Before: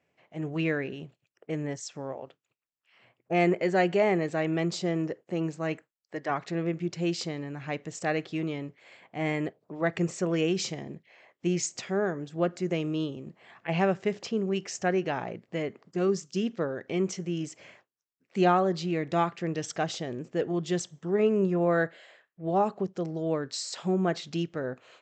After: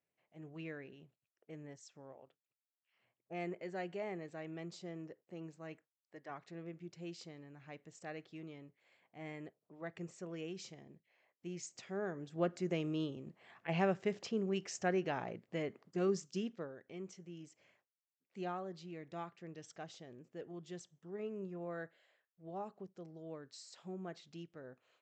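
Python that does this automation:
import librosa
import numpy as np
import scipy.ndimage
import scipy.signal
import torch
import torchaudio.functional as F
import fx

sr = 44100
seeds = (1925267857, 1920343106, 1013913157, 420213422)

y = fx.gain(x, sr, db=fx.line((11.48, -18.0), (12.42, -7.5), (16.28, -7.5), (16.83, -19.0)))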